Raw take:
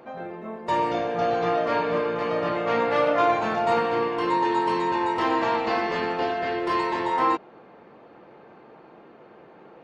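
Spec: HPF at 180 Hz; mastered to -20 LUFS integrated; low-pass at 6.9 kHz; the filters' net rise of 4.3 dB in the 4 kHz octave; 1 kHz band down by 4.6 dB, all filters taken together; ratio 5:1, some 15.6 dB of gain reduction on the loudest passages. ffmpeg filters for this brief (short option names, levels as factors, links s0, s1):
-af "highpass=180,lowpass=6900,equalizer=f=1000:t=o:g=-6,equalizer=f=4000:t=o:g=6.5,acompressor=threshold=0.0126:ratio=5,volume=9.44"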